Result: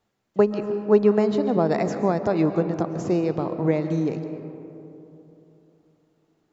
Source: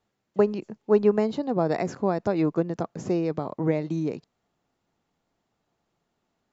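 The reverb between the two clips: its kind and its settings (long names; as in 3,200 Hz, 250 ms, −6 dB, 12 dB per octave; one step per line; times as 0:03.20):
comb and all-pass reverb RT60 3.2 s, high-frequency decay 0.35×, pre-delay 95 ms, DRR 8.5 dB
level +2.5 dB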